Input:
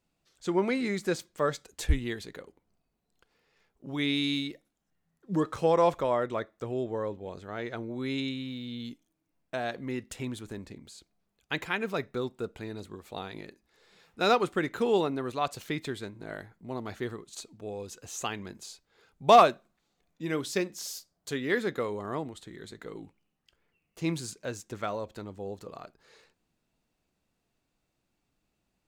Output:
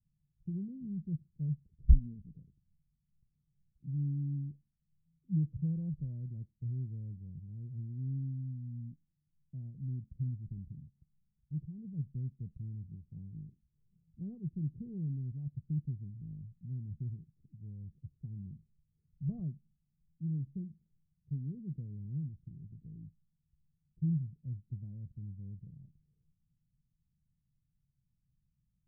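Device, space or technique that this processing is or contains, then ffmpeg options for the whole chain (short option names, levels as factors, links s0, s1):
the neighbour's flat through the wall: -filter_complex "[0:a]lowpass=f=150:w=0.5412,lowpass=f=150:w=1.3066,equalizer=f=150:t=o:w=0.55:g=7,asettb=1/sr,asplit=3[s0][s1][s2];[s0]atrim=end=1.924[s3];[s1]atrim=start=1.92:end=2.37,asetpts=PTS-STARTPTS,afade=t=in:d=0.004:c=qsin,afade=t=out:st=0.446:d=0.004:c=qsin,aecho=1:1:4.2:0.61,atrim=end_sample=19845[s4];[s2]atrim=start=2.366[s5];[s3][s4]acrossfade=d=0.004:c1=hsin:c2=qsin[s6];[s6][s5]acrossfade=d=0.004:c1=qsin:c2=hsin,volume=1.41"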